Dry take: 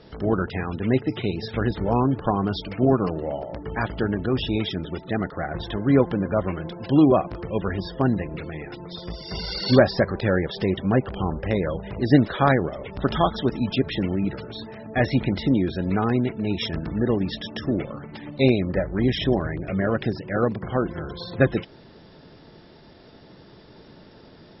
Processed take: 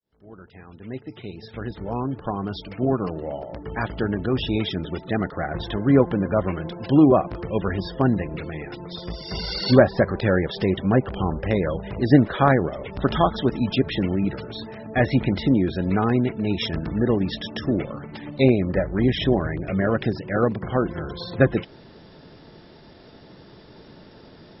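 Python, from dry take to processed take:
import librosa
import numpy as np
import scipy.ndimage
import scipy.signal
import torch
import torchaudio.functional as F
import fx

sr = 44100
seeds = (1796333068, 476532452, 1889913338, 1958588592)

y = fx.fade_in_head(x, sr, length_s=4.9)
y = fx.env_lowpass_down(y, sr, base_hz=2100.0, full_db=-14.5)
y = y * 10.0 ** (1.5 / 20.0)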